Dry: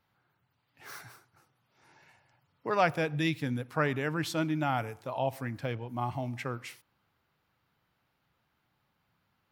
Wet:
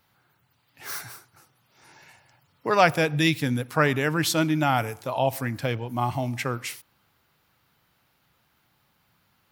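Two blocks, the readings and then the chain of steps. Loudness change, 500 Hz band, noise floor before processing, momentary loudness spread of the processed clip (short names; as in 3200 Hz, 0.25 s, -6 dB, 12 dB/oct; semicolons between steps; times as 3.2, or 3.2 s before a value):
+7.0 dB, +7.0 dB, -77 dBFS, 15 LU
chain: high shelf 4400 Hz +9.5 dB; gain +7 dB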